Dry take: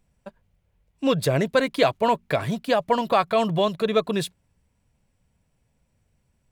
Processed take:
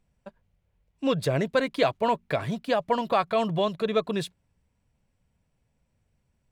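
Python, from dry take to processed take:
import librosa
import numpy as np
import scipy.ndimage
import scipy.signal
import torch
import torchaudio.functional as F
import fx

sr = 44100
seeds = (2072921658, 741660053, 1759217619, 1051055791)

y = fx.high_shelf(x, sr, hz=9500.0, db=-9.0)
y = y * 10.0 ** (-3.5 / 20.0)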